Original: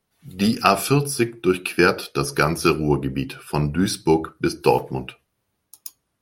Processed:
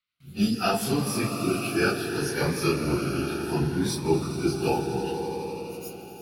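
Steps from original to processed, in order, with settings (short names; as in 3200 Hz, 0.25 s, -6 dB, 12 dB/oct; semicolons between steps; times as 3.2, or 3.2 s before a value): phase scrambler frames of 0.1 s; band noise 1200–4200 Hz -60 dBFS; gate with hold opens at -47 dBFS; on a send: swelling echo 83 ms, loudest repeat 5, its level -13 dB; on the sum: cascading phaser rising 0.7 Hz; gain -5.5 dB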